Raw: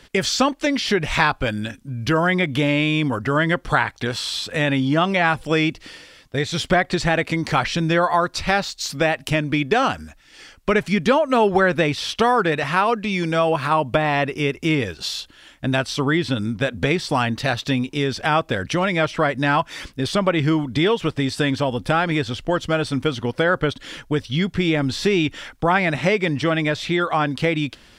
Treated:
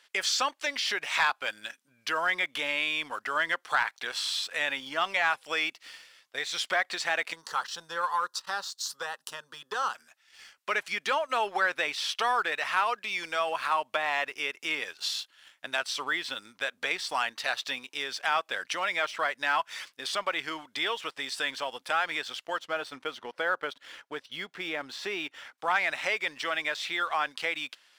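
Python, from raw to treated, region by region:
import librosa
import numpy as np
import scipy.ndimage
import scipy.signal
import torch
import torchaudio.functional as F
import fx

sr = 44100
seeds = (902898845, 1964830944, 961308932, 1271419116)

y = fx.chain(x, sr, fx.fixed_phaser(hz=450.0, stages=8),
    fx.transformer_sat(knee_hz=370.0), at=(7.33, 9.95))
y = fx.chain(y, sr, fx.highpass(hz=270.0, slope=6),
    fx.tilt_eq(slope=-3.0), at=(22.59, 25.58))
y = scipy.signal.sosfilt(scipy.signal.butter(2, 930.0, 'highpass', fs=sr, output='sos'), y)
y = fx.leveller(y, sr, passes=1)
y = y * 10.0 ** (-8.5 / 20.0)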